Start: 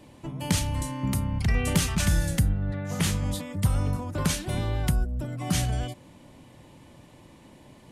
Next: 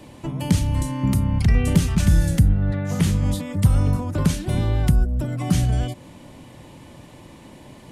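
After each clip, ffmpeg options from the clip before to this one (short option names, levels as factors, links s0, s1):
-filter_complex "[0:a]acrossover=split=420[s0][s1];[s1]acompressor=threshold=0.00794:ratio=2.5[s2];[s0][s2]amix=inputs=2:normalize=0,volume=2.37"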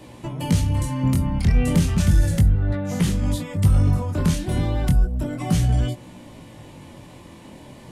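-filter_complex "[0:a]flanger=delay=16.5:depth=7.8:speed=0.33,asplit=2[s0][s1];[s1]asoftclip=type=tanh:threshold=0.0794,volume=0.562[s2];[s0][s2]amix=inputs=2:normalize=0"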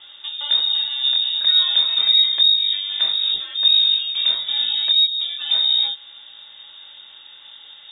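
-af "lowpass=f=3200:t=q:w=0.5098,lowpass=f=3200:t=q:w=0.6013,lowpass=f=3200:t=q:w=0.9,lowpass=f=3200:t=q:w=2.563,afreqshift=-3800"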